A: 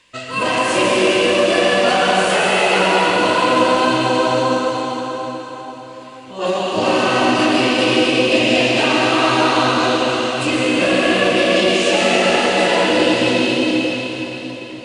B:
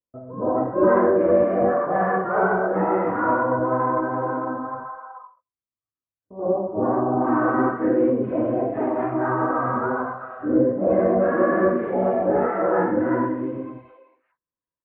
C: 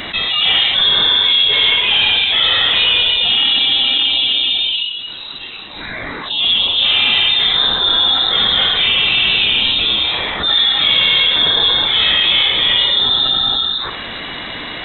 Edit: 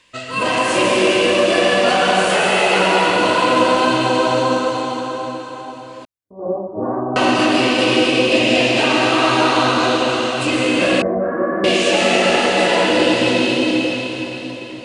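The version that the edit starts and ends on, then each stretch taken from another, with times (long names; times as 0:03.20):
A
0:06.05–0:07.16: punch in from B
0:11.02–0:11.64: punch in from B
not used: C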